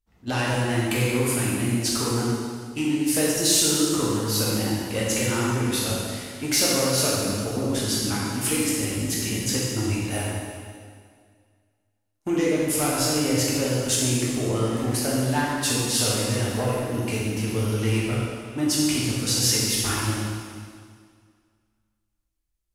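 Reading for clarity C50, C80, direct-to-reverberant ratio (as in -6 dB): -2.5 dB, 0.0 dB, -6.5 dB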